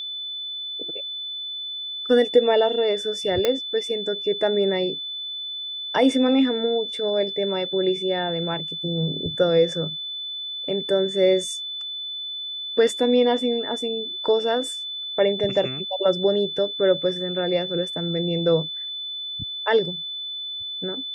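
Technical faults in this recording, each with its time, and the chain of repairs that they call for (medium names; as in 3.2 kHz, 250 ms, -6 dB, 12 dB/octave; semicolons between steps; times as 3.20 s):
whine 3.5 kHz -29 dBFS
3.45 s: pop -7 dBFS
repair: de-click; band-stop 3.5 kHz, Q 30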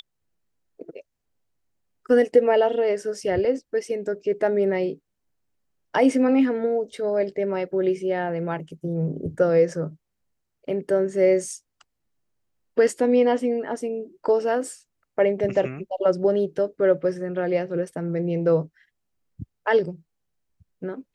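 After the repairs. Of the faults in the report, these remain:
nothing left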